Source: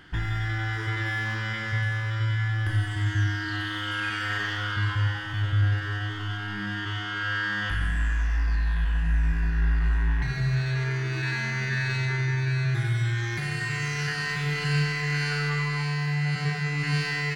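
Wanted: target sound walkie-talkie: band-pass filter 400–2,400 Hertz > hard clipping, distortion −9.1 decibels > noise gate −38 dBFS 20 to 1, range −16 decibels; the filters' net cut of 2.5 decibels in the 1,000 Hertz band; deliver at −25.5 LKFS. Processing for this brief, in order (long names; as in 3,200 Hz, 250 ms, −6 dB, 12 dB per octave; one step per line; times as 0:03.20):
band-pass filter 400–2,400 Hz
parametric band 1,000 Hz −3 dB
hard clipping −35 dBFS
noise gate −38 dBFS 20 to 1, range −16 dB
level +11 dB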